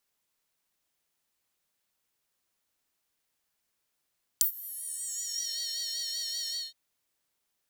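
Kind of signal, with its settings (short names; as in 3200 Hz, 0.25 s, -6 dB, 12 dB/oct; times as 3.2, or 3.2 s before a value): synth patch with vibrato D#5, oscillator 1 square, oscillator 2 saw, interval +19 st, filter highpass, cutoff 3900 Hz, Q 7.2, filter envelope 2 oct, filter decay 1.12 s, filter sustain 15%, attack 1.8 ms, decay 0.10 s, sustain -21.5 dB, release 0.21 s, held 2.11 s, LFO 5.2 Hz, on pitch 45 cents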